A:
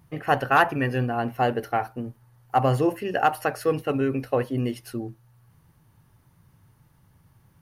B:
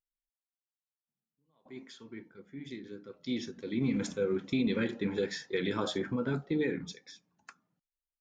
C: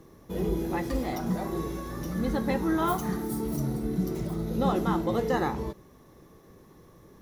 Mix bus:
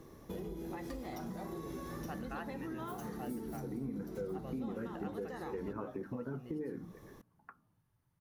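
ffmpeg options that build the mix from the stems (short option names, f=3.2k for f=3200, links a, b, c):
-filter_complex "[0:a]adelay=1800,volume=-18.5dB[a];[1:a]lowpass=f=1.4k:w=0.5412,lowpass=f=1.4k:w=1.3066,volume=2dB[b];[2:a]bandreject=f=60:t=h:w=6,bandreject=f=120:t=h:w=6,bandreject=f=180:t=h:w=6,acompressor=threshold=-32dB:ratio=6,volume=-1.5dB[c];[a][b][c]amix=inputs=3:normalize=0,acompressor=threshold=-41dB:ratio=3"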